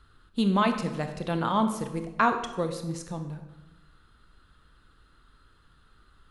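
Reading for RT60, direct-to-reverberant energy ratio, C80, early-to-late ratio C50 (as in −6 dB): 1.0 s, 6.5 dB, 10.5 dB, 8.5 dB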